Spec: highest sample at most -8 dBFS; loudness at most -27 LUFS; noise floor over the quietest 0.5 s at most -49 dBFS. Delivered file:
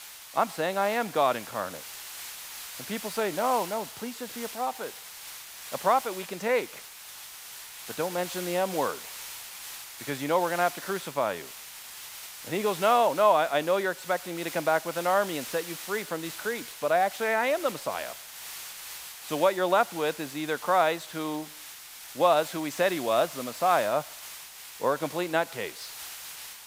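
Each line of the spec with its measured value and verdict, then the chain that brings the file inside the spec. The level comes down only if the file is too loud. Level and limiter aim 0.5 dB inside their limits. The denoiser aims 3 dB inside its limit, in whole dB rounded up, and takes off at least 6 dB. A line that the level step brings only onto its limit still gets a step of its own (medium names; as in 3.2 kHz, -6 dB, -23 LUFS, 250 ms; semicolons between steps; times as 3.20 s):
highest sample -9.5 dBFS: pass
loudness -28.5 LUFS: pass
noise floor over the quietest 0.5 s -45 dBFS: fail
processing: noise reduction 7 dB, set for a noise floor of -45 dBFS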